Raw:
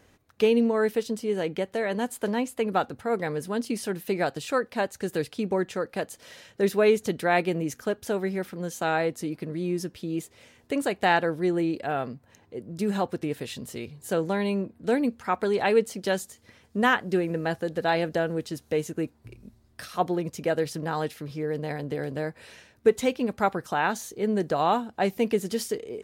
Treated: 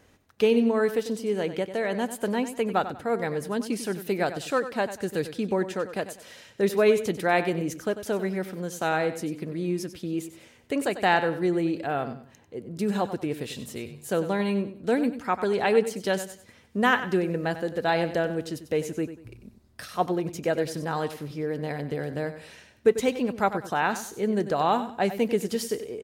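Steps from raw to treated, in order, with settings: feedback delay 95 ms, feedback 30%, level -12 dB

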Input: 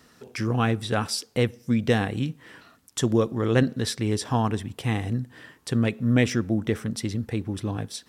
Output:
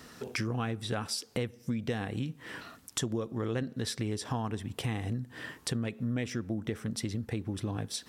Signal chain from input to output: compression 5:1, threshold -37 dBFS, peak gain reduction 19 dB; trim +5 dB

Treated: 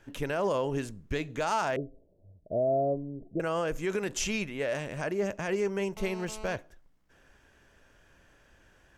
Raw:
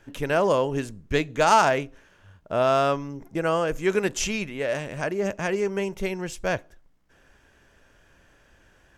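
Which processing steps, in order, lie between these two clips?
1.76–3.40 s: Chebyshev low-pass 670 Hz, order 5; peak limiter -17.5 dBFS, peak gain reduction 9 dB; 5.97–6.56 s: mobile phone buzz -42 dBFS; trim -3 dB

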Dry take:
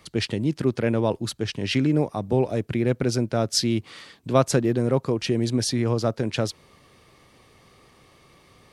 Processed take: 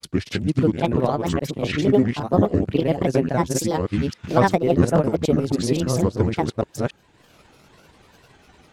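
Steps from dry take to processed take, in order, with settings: chunks repeated in reverse 276 ms, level -1 dB; dynamic bell 4.8 kHz, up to -5 dB, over -40 dBFS, Q 0.71; transient shaper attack +4 dB, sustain -6 dB; granulator, grains 20 per s, spray 24 ms, pitch spread up and down by 7 st; trim +1.5 dB

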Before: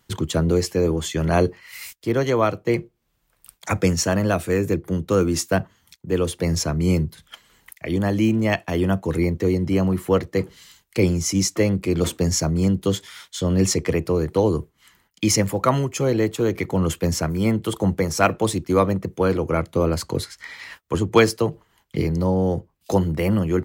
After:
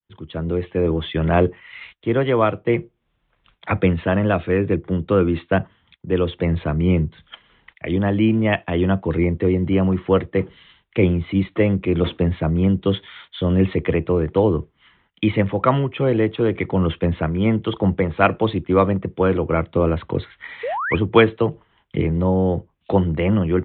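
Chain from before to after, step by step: fade-in on the opening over 0.98 s; painted sound rise, 20.63–20.96 s, 430–2600 Hz -26 dBFS; resampled via 8 kHz; trim +2 dB

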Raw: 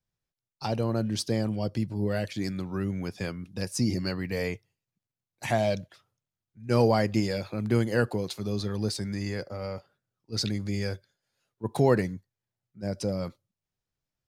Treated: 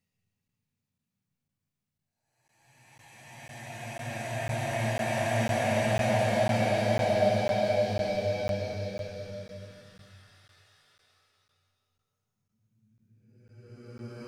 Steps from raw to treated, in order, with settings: gated-style reverb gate 170 ms rising, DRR -6.5 dB; Paulstretch 8.7×, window 0.50 s, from 4.95 s; crackling interface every 0.50 s, samples 512, zero, from 0.48 s; trim -6 dB

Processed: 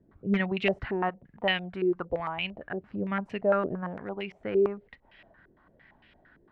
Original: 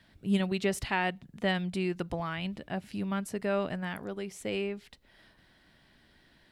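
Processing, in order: 1.09–2.90 s: peaking EQ 180 Hz -6 dB 1.8 oct; wavefolder -18.5 dBFS; step-sequenced low-pass 8.8 Hz 400–2600 Hz

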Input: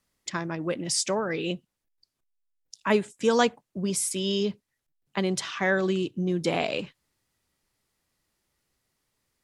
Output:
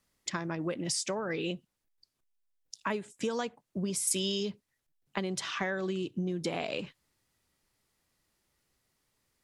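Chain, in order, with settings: compression 16:1, threshold -29 dBFS, peak gain reduction 14 dB; 4.07–4.50 s: treble shelf 4.2 kHz +9.5 dB

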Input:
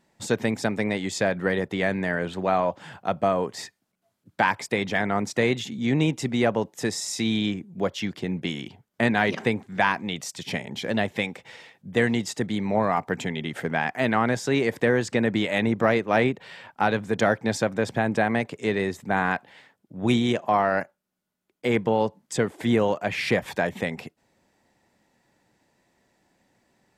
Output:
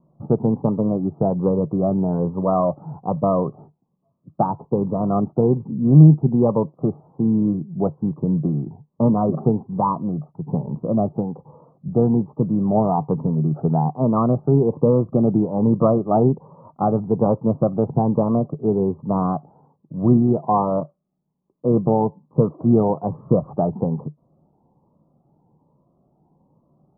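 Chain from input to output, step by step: steep low-pass 1.2 kHz 96 dB/octave; peaking EQ 150 Hz +13 dB 0.32 oct; Shepard-style phaser rising 1.2 Hz; trim +6 dB

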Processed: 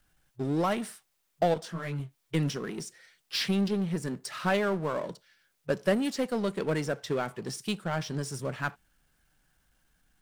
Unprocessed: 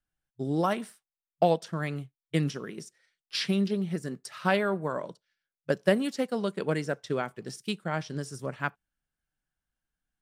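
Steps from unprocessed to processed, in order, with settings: power-law waveshaper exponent 0.7; 1.54–2.00 s: detune thickener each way 27 cents; trim -5 dB

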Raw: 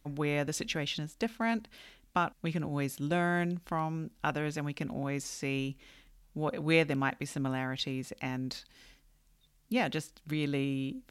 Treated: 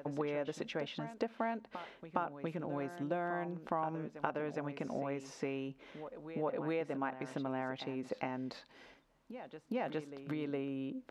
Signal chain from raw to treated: compression 10:1, threshold -38 dBFS, peak gain reduction 18 dB; band-pass filter 650 Hz, Q 1; band-stop 740 Hz, Q 15; reverse echo 412 ms -11 dB; trim +10 dB

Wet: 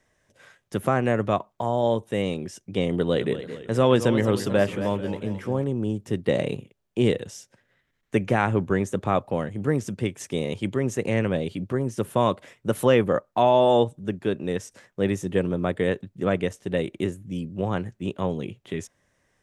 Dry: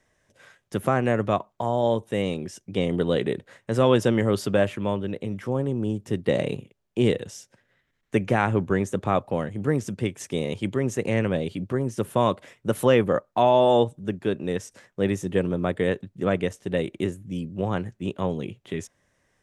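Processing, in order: 2.96–5.64 s: modulated delay 221 ms, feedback 50%, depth 153 cents, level -11.5 dB

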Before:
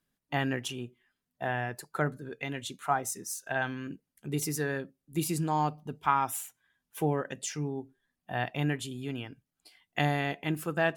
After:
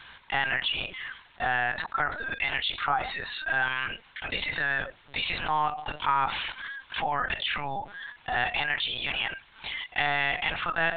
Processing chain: high-pass 780 Hz 24 dB/octave; LPC vocoder at 8 kHz pitch kept; level flattener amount 70%

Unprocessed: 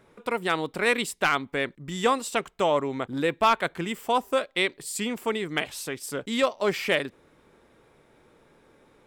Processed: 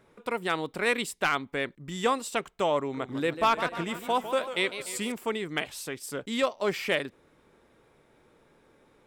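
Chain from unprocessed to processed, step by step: 2.79–5.12 s: modulated delay 150 ms, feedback 58%, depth 163 cents, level -11 dB; trim -3 dB

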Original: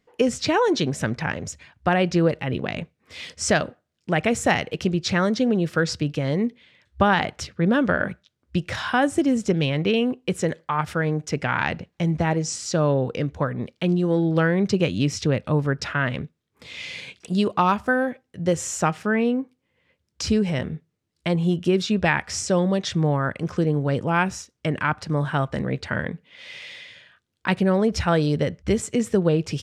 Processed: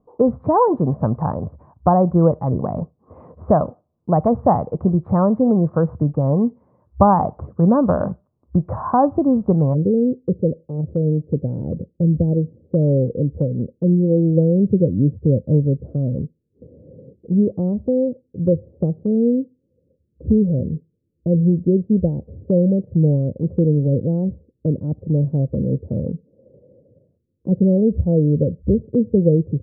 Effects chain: Chebyshev low-pass 1.1 kHz, order 5, from 9.73 s 530 Hz; dynamic bell 360 Hz, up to -6 dB, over -37 dBFS, Q 1.4; trim +8.5 dB

